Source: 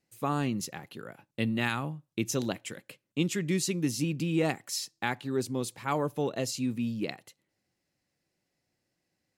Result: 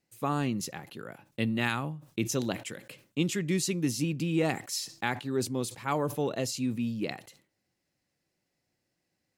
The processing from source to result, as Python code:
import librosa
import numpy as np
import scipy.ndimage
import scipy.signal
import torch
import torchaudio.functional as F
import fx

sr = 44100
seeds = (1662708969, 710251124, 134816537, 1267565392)

y = fx.sustainer(x, sr, db_per_s=150.0)